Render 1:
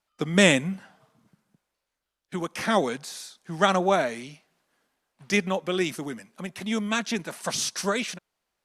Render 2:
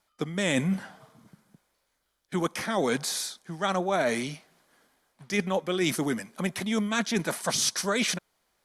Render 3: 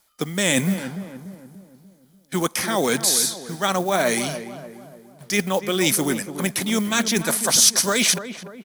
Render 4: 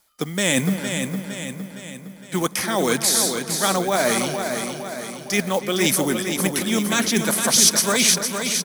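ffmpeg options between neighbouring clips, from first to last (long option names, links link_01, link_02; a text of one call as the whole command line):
ffmpeg -i in.wav -af "equalizer=frequency=11000:width=3.7:gain=4,bandreject=frequency=2700:width=11,areverse,acompressor=threshold=-30dB:ratio=16,areverse,volume=7.5dB" out.wav
ffmpeg -i in.wav -filter_complex "[0:a]acrusher=bits=7:mode=log:mix=0:aa=0.000001,asplit=2[link_01][link_02];[link_02]adelay=292,lowpass=frequency=1300:poles=1,volume=-10dB,asplit=2[link_03][link_04];[link_04]adelay=292,lowpass=frequency=1300:poles=1,volume=0.51,asplit=2[link_05][link_06];[link_06]adelay=292,lowpass=frequency=1300:poles=1,volume=0.51,asplit=2[link_07][link_08];[link_08]adelay=292,lowpass=frequency=1300:poles=1,volume=0.51,asplit=2[link_09][link_10];[link_10]adelay=292,lowpass=frequency=1300:poles=1,volume=0.51,asplit=2[link_11][link_12];[link_12]adelay=292,lowpass=frequency=1300:poles=1,volume=0.51[link_13];[link_01][link_03][link_05][link_07][link_09][link_11][link_13]amix=inputs=7:normalize=0,crystalizer=i=2:c=0,volume=4.5dB" out.wav
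ffmpeg -i in.wav -af "aecho=1:1:461|922|1383|1844|2305|2766:0.473|0.246|0.128|0.0665|0.0346|0.018" out.wav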